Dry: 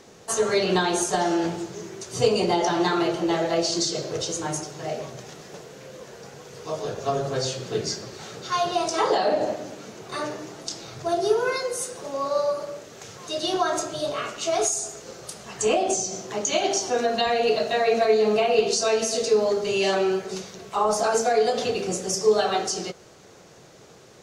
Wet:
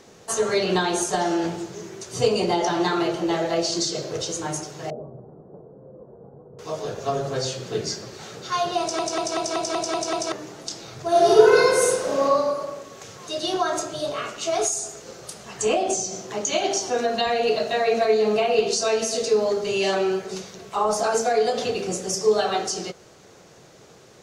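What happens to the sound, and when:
4.90–6.59 s: Gaussian low-pass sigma 11 samples
8.80 s: stutter in place 0.19 s, 8 plays
11.09–12.23 s: reverb throw, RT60 1.5 s, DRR -8 dB

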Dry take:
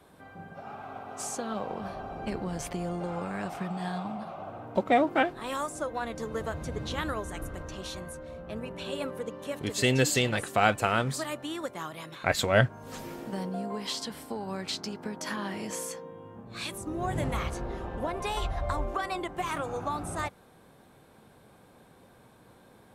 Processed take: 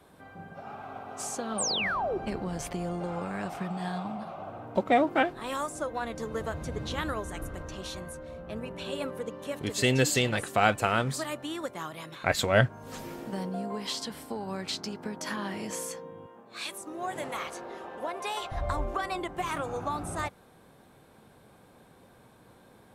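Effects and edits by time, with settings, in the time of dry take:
1.58–2.18 s: painted sound fall 340–9400 Hz -30 dBFS
16.26–18.52 s: Bessel high-pass 460 Hz

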